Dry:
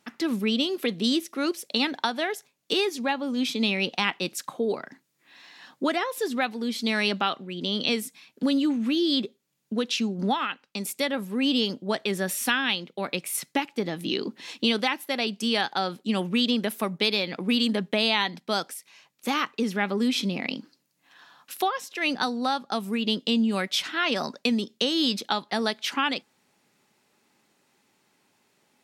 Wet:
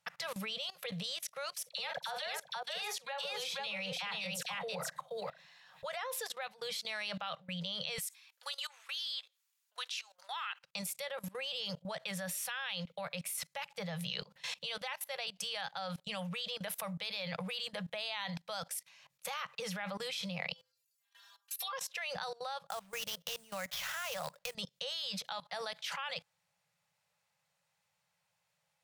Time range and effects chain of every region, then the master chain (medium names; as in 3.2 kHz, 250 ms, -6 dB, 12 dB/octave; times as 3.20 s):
1.54–5.83 s: phase dispersion lows, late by 41 ms, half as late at 1.3 kHz + multi-tap echo 47/480 ms -13.5/-4 dB
7.98–10.64 s: high-pass 920 Hz 24 dB/octave + treble shelf 4.9 kHz +4.5 dB
20.52–21.73 s: tilt EQ +3.5 dB/octave + inharmonic resonator 120 Hz, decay 0.39 s, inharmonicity 0.008
22.68–24.55 s: tone controls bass -3 dB, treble -6 dB + compression 2:1, threshold -28 dBFS + sample-rate reducer 8.9 kHz, jitter 20%
whole clip: elliptic band-stop 170–510 Hz, stop band 40 dB; tone controls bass +3 dB, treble 0 dB; level held to a coarse grid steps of 21 dB; trim +2.5 dB